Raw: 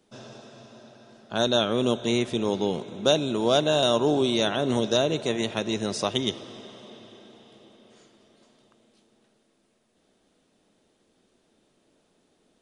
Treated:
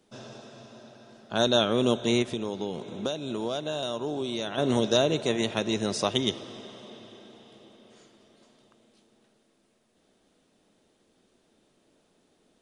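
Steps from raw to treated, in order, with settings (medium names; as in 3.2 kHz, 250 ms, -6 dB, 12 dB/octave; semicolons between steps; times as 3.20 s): 2.22–4.58 s: compression, threshold -28 dBFS, peak gain reduction 12.5 dB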